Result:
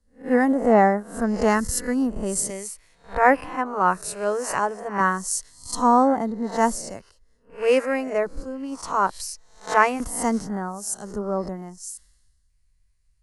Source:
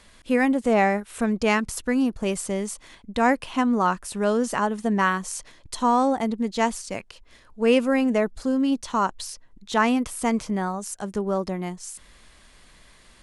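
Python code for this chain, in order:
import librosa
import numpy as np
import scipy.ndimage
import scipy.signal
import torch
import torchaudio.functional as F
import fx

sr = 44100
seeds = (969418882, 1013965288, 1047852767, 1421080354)

y = fx.spec_swells(x, sr, rise_s=0.54)
y = fx.dynamic_eq(y, sr, hz=6700.0, q=1.3, threshold_db=-48.0, ratio=4.0, max_db=-8, at=(2.67, 3.66))
y = fx.filter_lfo_notch(y, sr, shape='square', hz=0.2, low_hz=230.0, high_hz=2400.0, q=2.1)
y = fx.peak_eq(y, sr, hz=3400.0, db=-13.0, octaves=0.47)
y = fx.band_widen(y, sr, depth_pct=100)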